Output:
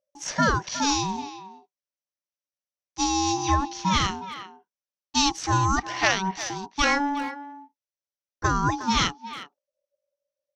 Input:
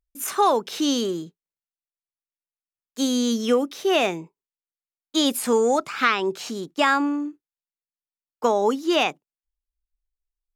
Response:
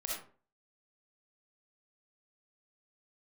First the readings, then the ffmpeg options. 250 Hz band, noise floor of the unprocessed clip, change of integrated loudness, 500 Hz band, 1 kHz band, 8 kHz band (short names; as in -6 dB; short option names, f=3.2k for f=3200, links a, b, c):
-4.5 dB, under -85 dBFS, -2.0 dB, -12.0 dB, +0.5 dB, +3.0 dB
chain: -filter_complex "[0:a]adynamicsmooth=sensitivity=1.5:basefreq=4.5k,aeval=exprs='val(0)*sin(2*PI*570*n/s)':c=same,lowpass=f=5.9k:t=q:w=7.9,asplit=2[a][b];[b]adelay=360,highpass=300,lowpass=3.4k,asoftclip=type=hard:threshold=-16dB,volume=-12dB[c];[a][c]amix=inputs=2:normalize=0"